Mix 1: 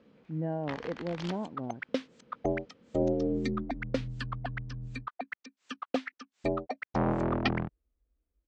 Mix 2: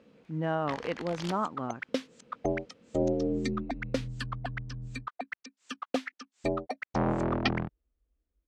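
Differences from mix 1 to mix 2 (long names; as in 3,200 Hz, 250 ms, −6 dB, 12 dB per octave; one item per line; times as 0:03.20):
speech: remove moving average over 35 samples
master: remove high-frequency loss of the air 95 metres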